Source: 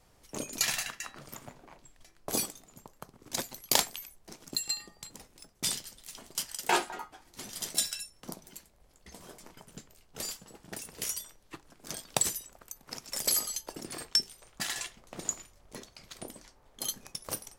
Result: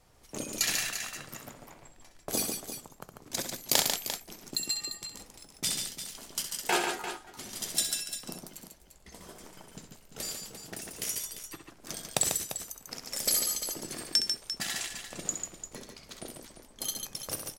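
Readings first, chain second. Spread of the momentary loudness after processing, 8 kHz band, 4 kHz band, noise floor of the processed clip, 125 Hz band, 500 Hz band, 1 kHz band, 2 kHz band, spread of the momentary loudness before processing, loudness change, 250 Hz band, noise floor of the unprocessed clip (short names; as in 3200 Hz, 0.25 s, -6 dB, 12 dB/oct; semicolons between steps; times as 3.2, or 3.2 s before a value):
21 LU, +2.0 dB, +2.0 dB, -58 dBFS, +2.0 dB, +1.5 dB, -1.0 dB, +1.5 dB, 22 LU, +1.0 dB, +2.0 dB, -64 dBFS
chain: dynamic EQ 980 Hz, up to -5 dB, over -55 dBFS, Q 2.6; tapped delay 65/144/346 ms -8/-5.5/-10 dB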